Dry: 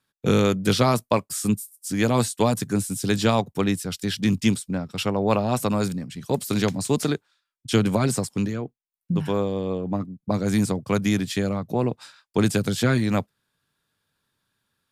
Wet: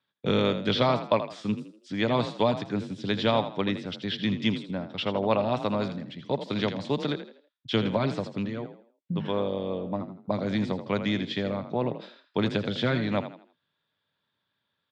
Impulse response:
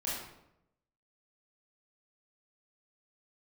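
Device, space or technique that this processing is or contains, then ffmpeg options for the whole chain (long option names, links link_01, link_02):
frequency-shifting delay pedal into a guitar cabinet: -filter_complex "[0:a]asplit=5[link_01][link_02][link_03][link_04][link_05];[link_02]adelay=81,afreqshift=37,volume=-11dB[link_06];[link_03]adelay=162,afreqshift=74,volume=-20.6dB[link_07];[link_04]adelay=243,afreqshift=111,volume=-30.3dB[link_08];[link_05]adelay=324,afreqshift=148,volume=-39.9dB[link_09];[link_01][link_06][link_07][link_08][link_09]amix=inputs=5:normalize=0,highpass=100,equalizer=frequency=590:width_type=q:width=4:gain=6,equalizer=frequency=940:width_type=q:width=4:gain=4,equalizer=frequency=2000:width_type=q:width=4:gain=4,equalizer=frequency=3400:width_type=q:width=4:gain=8,lowpass=frequency=4300:width=0.5412,lowpass=frequency=4300:width=1.3066,volume=-6dB"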